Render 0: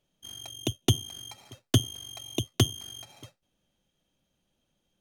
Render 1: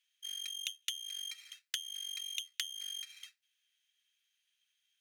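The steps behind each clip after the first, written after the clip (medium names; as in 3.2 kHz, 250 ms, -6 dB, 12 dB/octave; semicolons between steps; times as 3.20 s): steep high-pass 1.8 kHz 36 dB/octave; peaking EQ 15 kHz -10 dB 2.8 oct; compression 12:1, threshold -43 dBFS, peak gain reduction 12.5 dB; trim +9 dB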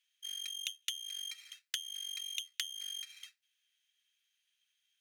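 no audible change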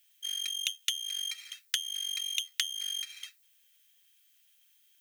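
added noise violet -74 dBFS; trim +7 dB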